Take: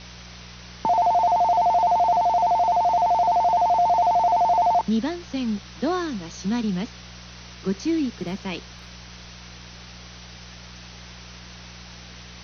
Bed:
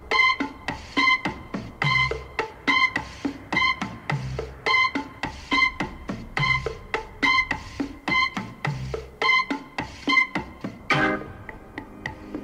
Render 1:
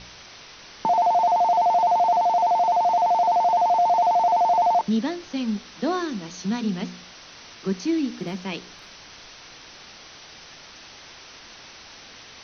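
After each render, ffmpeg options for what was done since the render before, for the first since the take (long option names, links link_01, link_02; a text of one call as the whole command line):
ffmpeg -i in.wav -af "bandreject=frequency=60:width_type=h:width=4,bandreject=frequency=120:width_type=h:width=4,bandreject=frequency=180:width_type=h:width=4,bandreject=frequency=240:width_type=h:width=4,bandreject=frequency=300:width_type=h:width=4,bandreject=frequency=360:width_type=h:width=4,bandreject=frequency=420:width_type=h:width=4,bandreject=frequency=480:width_type=h:width=4,bandreject=frequency=540:width_type=h:width=4,bandreject=frequency=600:width_type=h:width=4" out.wav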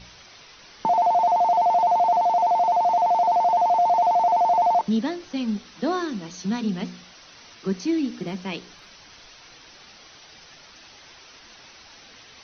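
ffmpeg -i in.wav -af "afftdn=noise_reduction=6:noise_floor=-45" out.wav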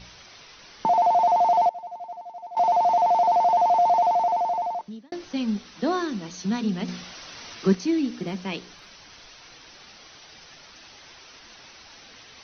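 ffmpeg -i in.wav -filter_complex "[0:a]asettb=1/sr,asplit=3[link_01][link_02][link_03];[link_01]atrim=end=1.694[link_04];[link_02]atrim=start=1.69:end=2.57,asetpts=PTS-STARTPTS,afade=type=in:duration=0.004:curve=qsin,afade=type=out:start_time=0.876:duration=0.004:curve=qsin,agate=range=-33dB:threshold=-8dB:ratio=3:release=100:detection=peak[link_05];[link_03]atrim=start=2.566[link_06];[link_04][link_05]acrossfade=duration=0.004:curve1=hsin:curve2=qsin[link_07];[link_07][link_06]acrossfade=duration=0.004:curve1=qsin:curve2=hsin,asettb=1/sr,asplit=3[link_08][link_09][link_10];[link_08]atrim=end=6.884[link_11];[link_09]atrim=start=6.88:end=7.75,asetpts=PTS-STARTPTS,afade=type=in:duration=0.004:curve=qsin,afade=type=out:start_time=0.866:duration=0.004:curve=qsin,acontrast=57[link_12];[link_10]atrim=start=7.746[link_13];[link_11][link_12]acrossfade=duration=0.004:curve1=hsin:curve2=qsin[link_14];[link_14][link_13]acrossfade=duration=0.004:curve1=qsin:curve2=hsin,asplit=2[link_15][link_16];[link_15]atrim=end=5.12,asetpts=PTS-STARTPTS,afade=type=out:start_time=3.92:duration=1.2[link_17];[link_16]atrim=start=5.12,asetpts=PTS-STARTPTS,afade=type=in:duration=0.004:curve=hsin[link_18];[link_17][link_18]concat=n=2:v=0:a=1" out.wav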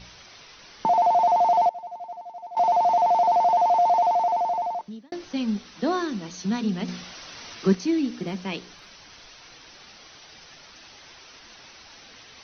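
ffmpeg -i in.wav -filter_complex "[0:a]asettb=1/sr,asplit=3[link_01][link_02][link_03];[link_01]atrim=end=3.554[link_04];[link_02]atrim=start=3.55:end=4.35,asetpts=PTS-STARTPTS,afade=type=in:duration=0.004:curve=qsin,afade=type=out:start_time=0.796:duration=0.004:curve=qsin,highpass=frequency=170:poles=1[link_05];[link_03]atrim=start=4.346[link_06];[link_04][link_05]acrossfade=duration=0.004:curve1=hsin:curve2=qsin[link_07];[link_07][link_06]acrossfade=duration=0.004:curve1=qsin:curve2=hsin" out.wav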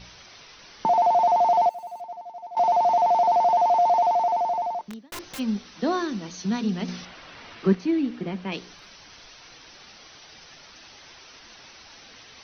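ffmpeg -i in.wav -filter_complex "[0:a]asplit=3[link_01][link_02][link_03];[link_01]afade=type=out:start_time=1.46:duration=0.02[link_04];[link_02]aeval=exprs='val(0)*gte(abs(val(0)),0.00355)':channel_layout=same,afade=type=in:start_time=1.46:duration=0.02,afade=type=out:start_time=2:duration=0.02[link_05];[link_03]afade=type=in:start_time=2:duration=0.02[link_06];[link_04][link_05][link_06]amix=inputs=3:normalize=0,asplit=3[link_07][link_08][link_09];[link_07]afade=type=out:start_time=4.82:duration=0.02[link_10];[link_08]aeval=exprs='(mod(35.5*val(0)+1,2)-1)/35.5':channel_layout=same,afade=type=in:start_time=4.82:duration=0.02,afade=type=out:start_time=5.38:duration=0.02[link_11];[link_09]afade=type=in:start_time=5.38:duration=0.02[link_12];[link_10][link_11][link_12]amix=inputs=3:normalize=0,asettb=1/sr,asplit=3[link_13][link_14][link_15];[link_13]atrim=end=7.054[link_16];[link_14]atrim=start=7.05:end=8.52,asetpts=PTS-STARTPTS,afade=type=in:duration=0.004:curve=qsin,afade=type=out:start_time=1.466:duration=0.004:curve=qsin,lowpass=3000[link_17];[link_15]atrim=start=8.516[link_18];[link_16][link_17]acrossfade=duration=0.004:curve1=hsin:curve2=qsin[link_19];[link_19][link_18]acrossfade=duration=0.004:curve1=qsin:curve2=hsin" out.wav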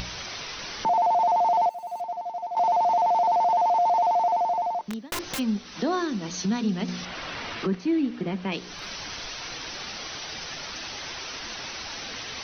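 ffmpeg -i in.wav -af "acompressor=mode=upward:threshold=-24dB:ratio=2.5,alimiter=limit=-17dB:level=0:latency=1:release=16" out.wav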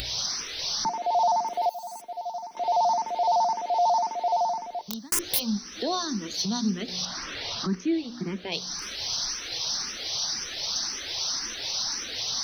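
ffmpeg -i in.wav -filter_complex "[0:a]aexciter=amount=2.9:drive=8:freq=3700,asplit=2[link_01][link_02];[link_02]afreqshift=1.9[link_03];[link_01][link_03]amix=inputs=2:normalize=1" out.wav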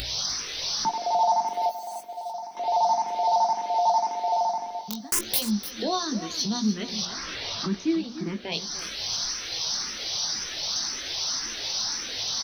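ffmpeg -i in.wav -filter_complex "[0:a]asplit=2[link_01][link_02];[link_02]adelay=19,volume=-8dB[link_03];[link_01][link_03]amix=inputs=2:normalize=0,aecho=1:1:298:0.224" out.wav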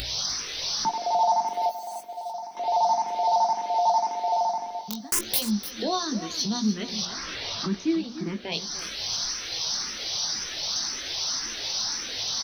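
ffmpeg -i in.wav -af anull out.wav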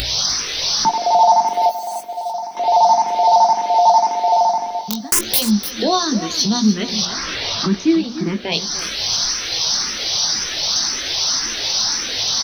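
ffmpeg -i in.wav -af "volume=10dB,alimiter=limit=-1dB:level=0:latency=1" out.wav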